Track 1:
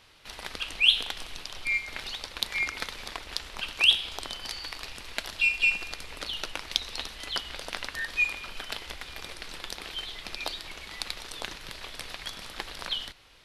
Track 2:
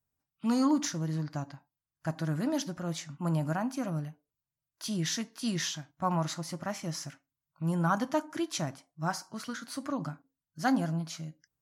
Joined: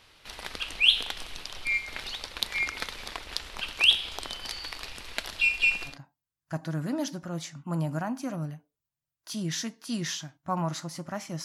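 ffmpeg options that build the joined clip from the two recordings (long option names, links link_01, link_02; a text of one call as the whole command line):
ffmpeg -i cue0.wav -i cue1.wav -filter_complex "[0:a]apad=whole_dur=11.44,atrim=end=11.44,atrim=end=5.98,asetpts=PTS-STARTPTS[link_01];[1:a]atrim=start=1.38:end=6.98,asetpts=PTS-STARTPTS[link_02];[link_01][link_02]acrossfade=duration=0.14:curve1=tri:curve2=tri" out.wav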